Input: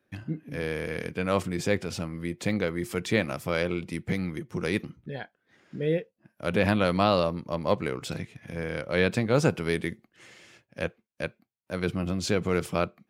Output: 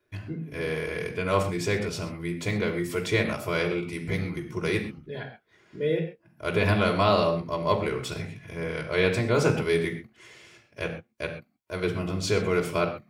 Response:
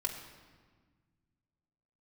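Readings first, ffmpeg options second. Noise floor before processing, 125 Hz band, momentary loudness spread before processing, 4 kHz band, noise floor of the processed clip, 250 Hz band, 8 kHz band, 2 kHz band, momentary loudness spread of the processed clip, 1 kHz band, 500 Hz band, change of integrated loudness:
-78 dBFS, +1.5 dB, 13 LU, +2.0 dB, -68 dBFS, -1.0 dB, +1.0 dB, +2.0 dB, 13 LU, +2.5 dB, +2.0 dB, +1.5 dB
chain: -filter_complex "[1:a]atrim=start_sample=2205,atrim=end_sample=6174[s0];[0:a][s0]afir=irnorm=-1:irlink=0"

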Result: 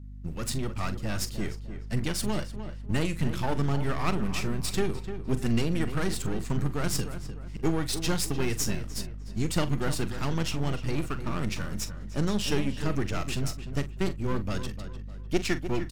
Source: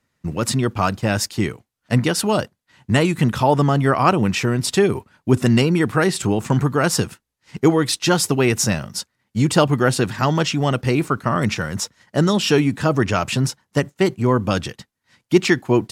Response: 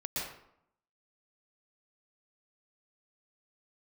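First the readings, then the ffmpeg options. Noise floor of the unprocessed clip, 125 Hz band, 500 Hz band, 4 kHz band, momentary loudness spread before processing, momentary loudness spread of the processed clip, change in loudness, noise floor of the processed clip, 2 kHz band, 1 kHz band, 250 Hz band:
-78 dBFS, -10.0 dB, -14.0 dB, -10.5 dB, 8 LU, 8 LU, -11.5 dB, -39 dBFS, -12.5 dB, -14.5 dB, -11.5 dB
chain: -filter_complex "[0:a]aeval=exprs='if(lt(val(0),0),0.251*val(0),val(0))':c=same,aeval=exprs='val(0)+0.0178*(sin(2*PI*50*n/s)+sin(2*PI*2*50*n/s)/2+sin(2*PI*3*50*n/s)/3+sin(2*PI*4*50*n/s)/4+sin(2*PI*5*50*n/s)/5)':c=same,equalizer=f=770:t=o:w=2.4:g=-6,asplit=2[s0][s1];[s1]adelay=43,volume=0.224[s2];[s0][s2]amix=inputs=2:normalize=0,asplit=2[s3][s4];[s4]adelay=301,lowpass=f=2300:p=1,volume=0.316,asplit=2[s5][s6];[s6]adelay=301,lowpass=f=2300:p=1,volume=0.38,asplit=2[s7][s8];[s8]adelay=301,lowpass=f=2300:p=1,volume=0.38,asplit=2[s9][s10];[s10]adelay=301,lowpass=f=2300:p=1,volume=0.38[s11];[s5][s7][s9][s11]amix=inputs=4:normalize=0[s12];[s3][s12]amix=inputs=2:normalize=0,volume=0.501"

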